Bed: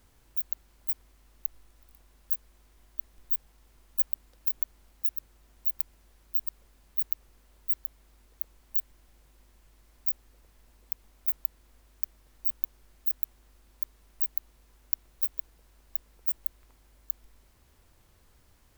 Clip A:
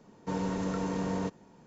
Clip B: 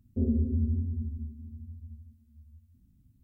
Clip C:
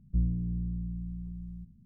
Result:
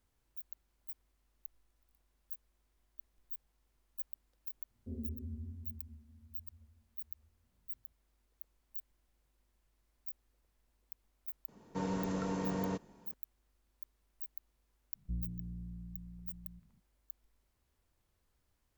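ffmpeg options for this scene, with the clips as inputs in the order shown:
-filter_complex "[0:a]volume=-16dB[a];[2:a]atrim=end=3.23,asetpts=PTS-STARTPTS,volume=-16dB,afade=t=in:d=0.004:c=hsin,afade=t=out:st=3.226:d=0.004:c=hsin,adelay=4700[b];[1:a]atrim=end=1.66,asetpts=PTS-STARTPTS,volume=-4dB,afade=t=in:d=0.004:c=hsin,afade=t=out:st=1.656:d=0.004:c=hsin,adelay=11480[c];[3:a]atrim=end=1.85,asetpts=PTS-STARTPTS,volume=-11.5dB,afade=t=in:d=0.004:c=hsin,afade=t=out:st=1.846:d=0.004:c=hsin,adelay=14950[d];[a][b][c][d]amix=inputs=4:normalize=0"

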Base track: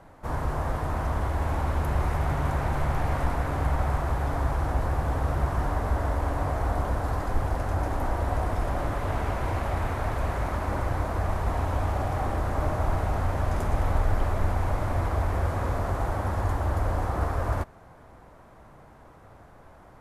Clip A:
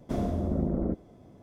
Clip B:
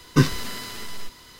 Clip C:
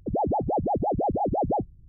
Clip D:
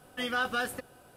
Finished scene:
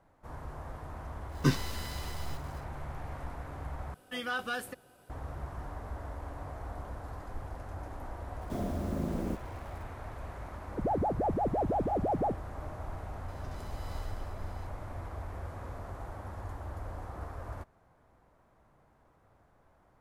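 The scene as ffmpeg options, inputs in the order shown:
-filter_complex "[2:a]asplit=2[a][b];[0:a]volume=-14.5dB[c];[a]acrusher=bits=6:mix=0:aa=0.5[d];[1:a]acrusher=bits=7:mix=0:aa=0.000001[e];[b]acompressor=threshold=-32dB:ratio=6:attack=3.2:release=140:knee=1:detection=peak[f];[c]asplit=2[g][h];[g]atrim=end=3.944[i];[4:a]atrim=end=1.16,asetpts=PTS-STARTPTS,volume=-4.5dB[j];[h]atrim=start=5.096[k];[d]atrim=end=1.39,asetpts=PTS-STARTPTS,volume=-9dB,afade=t=in:d=0.1,afade=t=out:st=1.29:d=0.1,adelay=1280[l];[e]atrim=end=1.42,asetpts=PTS-STARTPTS,volume=-5.5dB,afade=t=in:d=0.004:c=hsin,afade=t=out:st=1.416:d=0.004:c=hsin,adelay=8410[m];[3:a]atrim=end=1.88,asetpts=PTS-STARTPTS,volume=-5dB,afade=t=in:d=0.004:c=hsin,afade=t=out:st=1.876:d=0.004:c=hsin,adelay=10710[n];[f]atrim=end=1.39,asetpts=PTS-STARTPTS,volume=-16.5dB,afade=t=in:d=0.004:c=hsin,afade=t=out:st=1.386:d=0.004:c=hsin,adelay=13280[o];[i][j]acrossfade=d=0.004:c1=hsin:c2=hsin[p];[p][k]acrossfade=d=0.004:c1=hsin:c2=hsin[q];[q][l][m][n][o]amix=inputs=5:normalize=0"

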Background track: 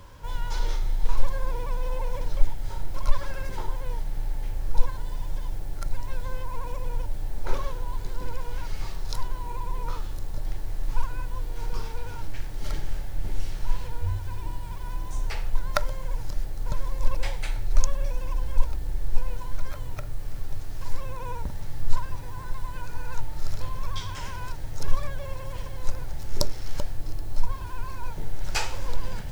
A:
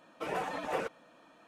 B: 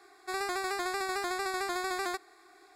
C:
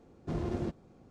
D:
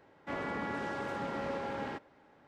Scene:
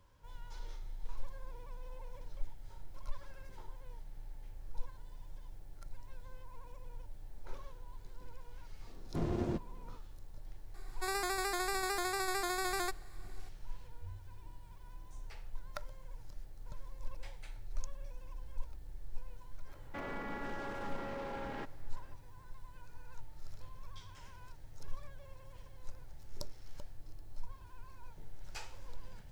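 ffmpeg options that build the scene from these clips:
-filter_complex "[0:a]volume=-19dB[a];[2:a]highshelf=f=8k:g=9.5[b];[4:a]alimiter=level_in=9.5dB:limit=-24dB:level=0:latency=1:release=36,volume=-9.5dB[c];[3:a]atrim=end=1.1,asetpts=PTS-STARTPTS,volume=-1dB,afade=t=in:d=0.004:c=hsin,afade=t=out:st=1.096:d=0.004:c=hsin,adelay=8870[d];[b]atrim=end=2.75,asetpts=PTS-STARTPTS,volume=-3dB,afade=t=in:d=0.004:c=hsin,afade=t=out:st=2.746:d=0.004:c=hsin,adelay=473634S[e];[c]atrim=end=2.47,asetpts=PTS-STARTPTS,volume=-1dB,afade=t=in:d=0.004:c=hsin,afade=t=out:st=2.466:d=0.004:c=hsin,adelay=19670[f];[a][d][e][f]amix=inputs=4:normalize=0"

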